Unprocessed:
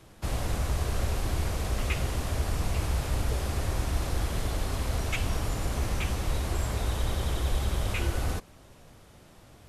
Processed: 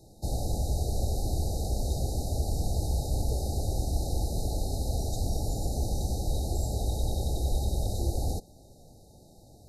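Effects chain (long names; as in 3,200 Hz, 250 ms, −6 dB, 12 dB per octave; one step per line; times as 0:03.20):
linear-phase brick-wall band-stop 880–3,700 Hz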